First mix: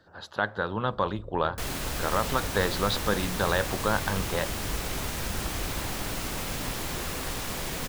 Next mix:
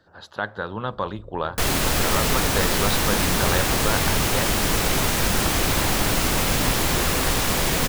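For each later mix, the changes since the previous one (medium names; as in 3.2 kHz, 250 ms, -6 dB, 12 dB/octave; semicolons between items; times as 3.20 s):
second sound +11.5 dB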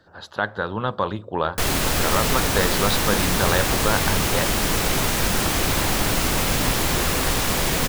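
speech +3.5 dB; first sound: muted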